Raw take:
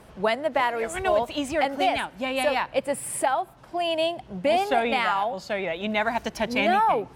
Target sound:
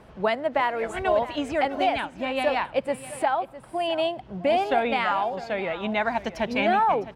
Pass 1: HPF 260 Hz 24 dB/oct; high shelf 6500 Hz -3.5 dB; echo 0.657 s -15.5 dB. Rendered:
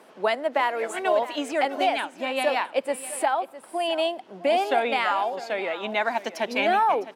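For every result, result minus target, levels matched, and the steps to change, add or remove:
8000 Hz band +7.5 dB; 250 Hz band -3.5 dB
change: high shelf 6500 Hz -15 dB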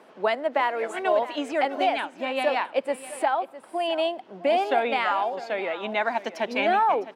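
250 Hz band -3.0 dB
remove: HPF 260 Hz 24 dB/oct

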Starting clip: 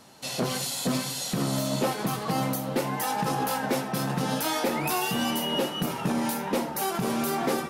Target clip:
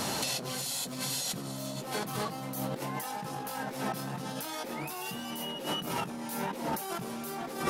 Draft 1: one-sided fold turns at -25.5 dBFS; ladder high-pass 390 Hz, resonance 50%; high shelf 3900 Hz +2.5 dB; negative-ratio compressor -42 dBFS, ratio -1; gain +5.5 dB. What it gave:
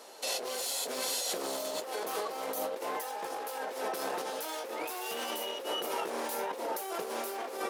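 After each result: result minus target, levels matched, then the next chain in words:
one-sided fold: distortion +17 dB; 500 Hz band +4.0 dB
one-sided fold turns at -19.5 dBFS; ladder high-pass 390 Hz, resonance 50%; high shelf 3900 Hz +2.5 dB; negative-ratio compressor -42 dBFS, ratio -1; gain +5.5 dB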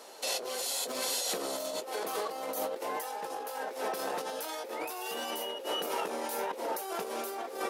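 500 Hz band +4.0 dB
one-sided fold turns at -19.5 dBFS; high shelf 3900 Hz +2.5 dB; negative-ratio compressor -42 dBFS, ratio -1; gain +5.5 dB

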